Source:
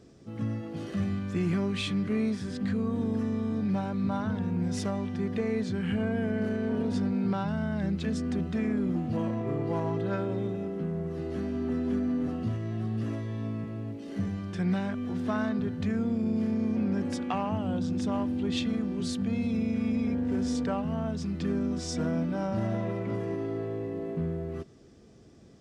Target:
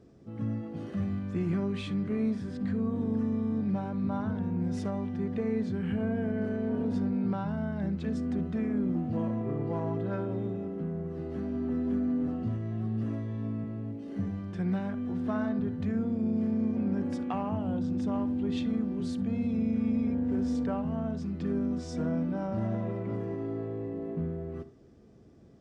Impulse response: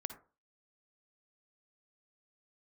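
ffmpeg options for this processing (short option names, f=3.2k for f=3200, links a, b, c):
-filter_complex "[0:a]highshelf=f=2.1k:g=-11,asplit=2[a][b];[1:a]atrim=start_sample=2205,atrim=end_sample=3969[c];[b][c]afir=irnorm=-1:irlink=0,volume=1.5dB[d];[a][d]amix=inputs=2:normalize=0,volume=-7dB"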